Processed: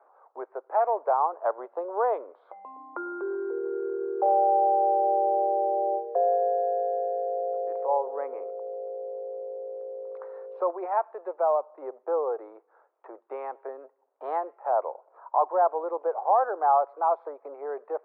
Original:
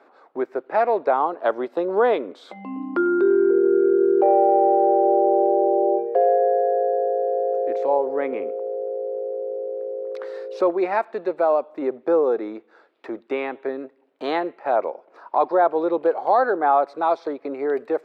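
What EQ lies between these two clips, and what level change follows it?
high-pass 470 Hz 24 dB/octave; resonant low-pass 1 kHz, resonance Q 2; distance through air 130 m; -7.5 dB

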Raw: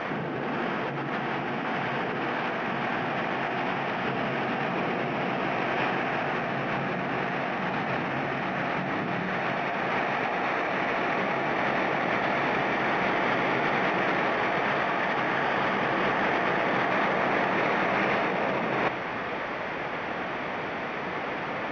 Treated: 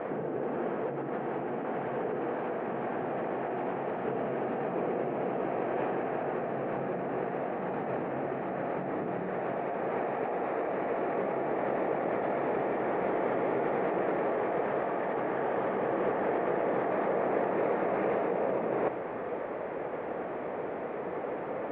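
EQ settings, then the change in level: low-pass 2 kHz 6 dB/octave; distance through air 380 m; peaking EQ 470 Hz +12 dB 1.4 oct; -8.5 dB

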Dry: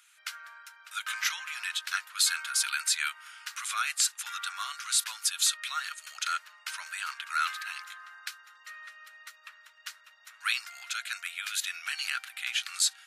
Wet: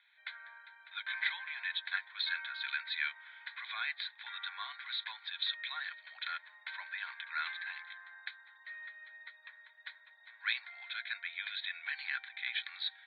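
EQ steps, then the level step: high-pass 510 Hz; steep low-pass 3.9 kHz 96 dB/octave; static phaser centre 1.9 kHz, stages 8; 0.0 dB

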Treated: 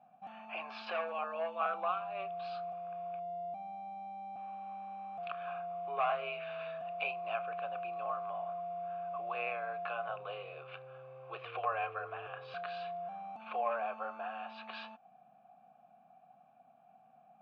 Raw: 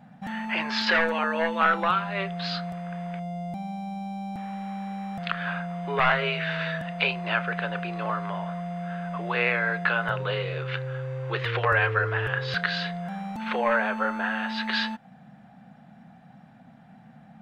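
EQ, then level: vowel filter a; bass shelf 110 Hz +8 dB; -1.5 dB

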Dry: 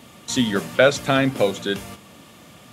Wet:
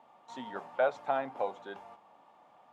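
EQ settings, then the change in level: band-pass filter 840 Hz, Q 5.6; 0.0 dB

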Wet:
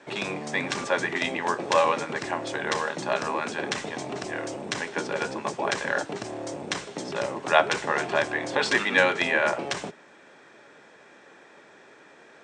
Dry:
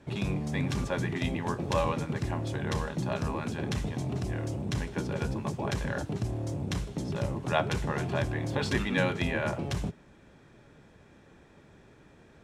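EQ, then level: high-pass 440 Hz 12 dB/octave; Chebyshev low-pass 8.8 kHz, order 5; peaking EQ 1.8 kHz +3.5 dB 0.83 oct; +8.5 dB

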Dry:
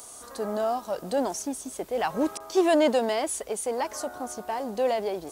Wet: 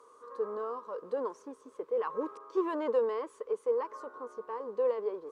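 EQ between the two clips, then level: two resonant band-passes 710 Hz, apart 1.2 oct; +2.5 dB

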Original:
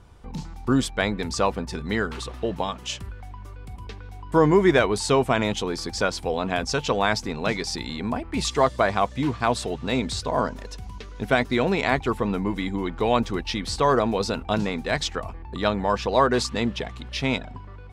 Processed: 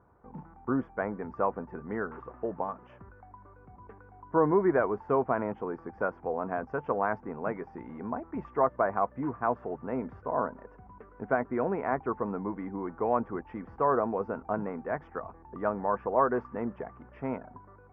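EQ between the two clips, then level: high-pass 300 Hz 6 dB/octave; inverse Chebyshev low-pass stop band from 3.7 kHz, stop band 50 dB; -4.5 dB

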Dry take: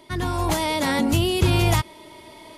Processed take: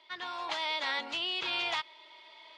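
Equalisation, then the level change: high-pass 920 Hz 12 dB/octave; four-pole ladder low-pass 4.6 kHz, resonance 35%; 0.0 dB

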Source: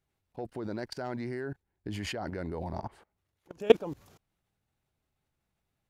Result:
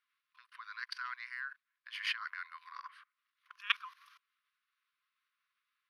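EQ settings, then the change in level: boxcar filter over 6 samples; brick-wall FIR high-pass 1 kHz; +6.0 dB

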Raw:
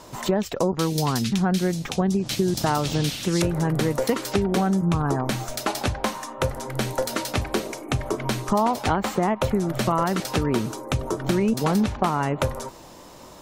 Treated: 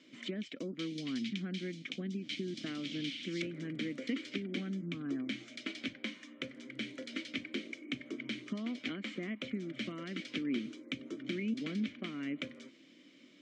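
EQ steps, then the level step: vowel filter i; cabinet simulation 210–8100 Hz, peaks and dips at 270 Hz -7 dB, 410 Hz -6 dB, 840 Hz -5 dB; +3.0 dB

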